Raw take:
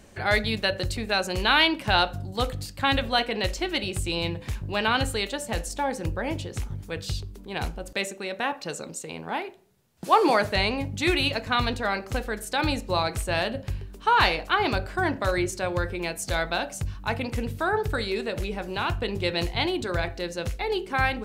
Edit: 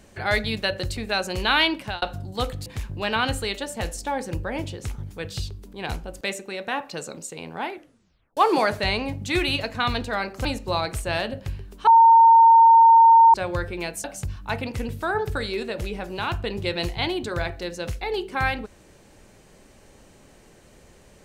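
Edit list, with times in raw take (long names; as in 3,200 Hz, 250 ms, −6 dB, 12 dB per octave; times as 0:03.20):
0:01.77–0:02.02: fade out
0:02.66–0:04.38: remove
0:09.43: tape stop 0.66 s
0:12.17–0:12.67: remove
0:14.09–0:15.56: beep over 913 Hz −9 dBFS
0:16.26–0:16.62: remove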